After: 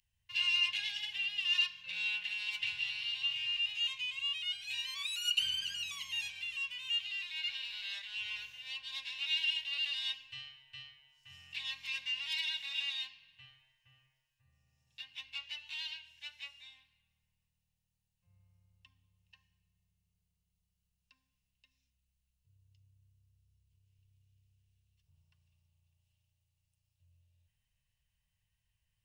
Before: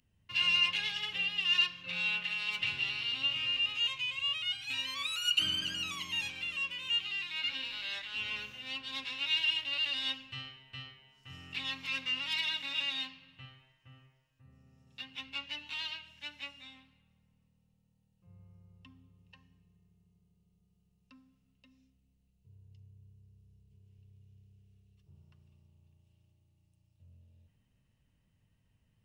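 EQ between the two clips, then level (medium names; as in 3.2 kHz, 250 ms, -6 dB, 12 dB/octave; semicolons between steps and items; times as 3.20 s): Butterworth band-stop 1.3 kHz, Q 5.9; amplifier tone stack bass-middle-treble 10-0-10; 0.0 dB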